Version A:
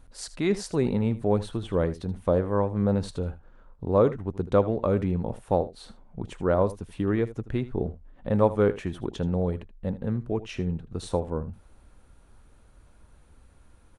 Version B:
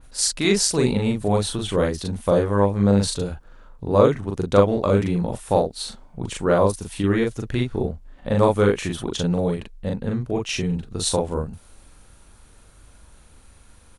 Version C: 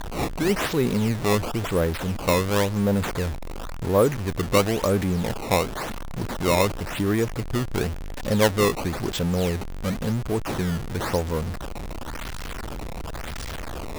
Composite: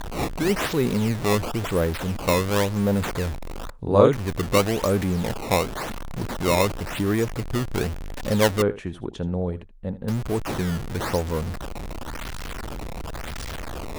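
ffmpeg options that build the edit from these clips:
-filter_complex "[2:a]asplit=3[s0][s1][s2];[s0]atrim=end=3.702[s3];[1:a]atrim=start=3.698:end=4.132[s4];[s1]atrim=start=4.128:end=8.622[s5];[0:a]atrim=start=8.618:end=10.082[s6];[s2]atrim=start=10.078[s7];[s3][s4]acrossfade=d=0.004:c1=hsin:c2=hsin[s8];[s8][s5]acrossfade=d=0.004:c1=hsin:c2=hsin[s9];[s9][s6]acrossfade=d=0.004:c1=hsin:c2=hsin[s10];[s10][s7]acrossfade=d=0.004:c1=hsin:c2=hsin"

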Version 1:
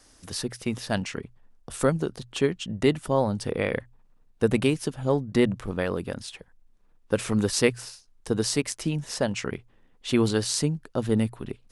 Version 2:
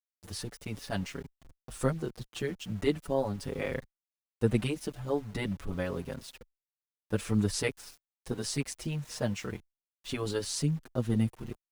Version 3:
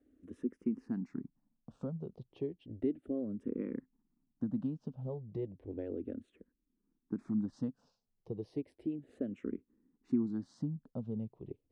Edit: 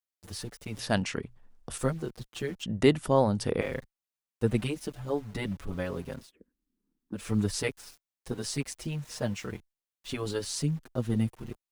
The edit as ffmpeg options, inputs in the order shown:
-filter_complex "[0:a]asplit=2[s0][s1];[1:a]asplit=4[s2][s3][s4][s5];[s2]atrim=end=0.792[s6];[s0]atrim=start=0.788:end=1.782[s7];[s3]atrim=start=1.778:end=2.632[s8];[s1]atrim=start=2.628:end=3.612[s9];[s4]atrim=start=3.608:end=6.33[s10];[2:a]atrim=start=6.17:end=7.27[s11];[s5]atrim=start=7.11[s12];[s6][s7]acrossfade=d=0.004:c1=hsin:c2=hsin[s13];[s13][s8]acrossfade=d=0.004:c1=hsin:c2=hsin[s14];[s14][s9]acrossfade=d=0.004:c1=hsin:c2=hsin[s15];[s15][s10]acrossfade=d=0.004:c1=hsin:c2=hsin[s16];[s16][s11]acrossfade=d=0.16:c1=tri:c2=tri[s17];[s17][s12]acrossfade=d=0.16:c1=tri:c2=tri"

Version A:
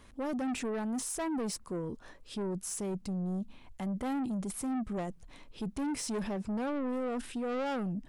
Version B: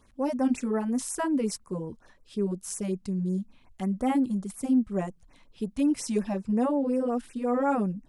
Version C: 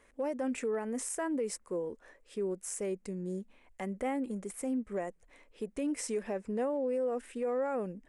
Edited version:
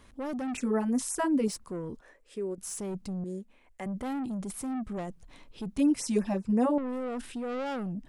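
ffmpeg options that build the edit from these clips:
-filter_complex "[1:a]asplit=2[s0][s1];[2:a]asplit=2[s2][s3];[0:a]asplit=5[s4][s5][s6][s7][s8];[s4]atrim=end=0.572[s9];[s0]atrim=start=0.568:end=1.482[s10];[s5]atrim=start=1.478:end=2.012[s11];[s2]atrim=start=2.008:end=2.582[s12];[s6]atrim=start=2.578:end=3.242[s13];[s3]atrim=start=3.238:end=3.862[s14];[s7]atrim=start=3.858:end=5.782[s15];[s1]atrim=start=5.778:end=6.782[s16];[s8]atrim=start=6.778[s17];[s9][s10]acrossfade=d=0.004:c1=hsin:c2=hsin[s18];[s18][s11]acrossfade=d=0.004:c1=hsin:c2=hsin[s19];[s19][s12]acrossfade=d=0.004:c1=hsin:c2=hsin[s20];[s20][s13]acrossfade=d=0.004:c1=hsin:c2=hsin[s21];[s21][s14]acrossfade=d=0.004:c1=hsin:c2=hsin[s22];[s22][s15]acrossfade=d=0.004:c1=hsin:c2=hsin[s23];[s23][s16]acrossfade=d=0.004:c1=hsin:c2=hsin[s24];[s24][s17]acrossfade=d=0.004:c1=hsin:c2=hsin"

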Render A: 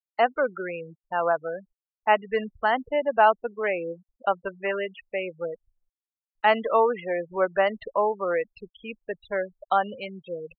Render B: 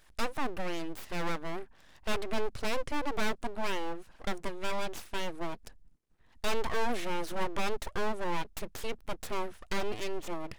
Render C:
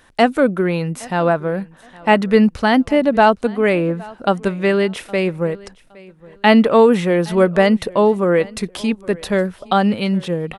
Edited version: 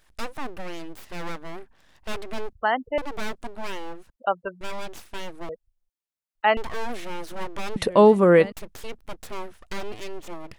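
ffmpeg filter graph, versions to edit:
-filter_complex "[0:a]asplit=3[s0][s1][s2];[1:a]asplit=5[s3][s4][s5][s6][s7];[s3]atrim=end=2.532[s8];[s0]atrim=start=2.528:end=2.982[s9];[s4]atrim=start=2.978:end=4.102[s10];[s1]atrim=start=4.098:end=4.612[s11];[s5]atrim=start=4.608:end=5.492[s12];[s2]atrim=start=5.488:end=6.572[s13];[s6]atrim=start=6.568:end=7.762[s14];[2:a]atrim=start=7.758:end=8.522[s15];[s7]atrim=start=8.518[s16];[s8][s9]acrossfade=d=0.004:c1=hsin:c2=hsin[s17];[s17][s10]acrossfade=d=0.004:c1=hsin:c2=hsin[s18];[s18][s11]acrossfade=d=0.004:c1=hsin:c2=hsin[s19];[s19][s12]acrossfade=d=0.004:c1=hsin:c2=hsin[s20];[s20][s13]acrossfade=d=0.004:c1=hsin:c2=hsin[s21];[s21][s14]acrossfade=d=0.004:c1=hsin:c2=hsin[s22];[s22][s15]acrossfade=d=0.004:c1=hsin:c2=hsin[s23];[s23][s16]acrossfade=d=0.004:c1=hsin:c2=hsin"

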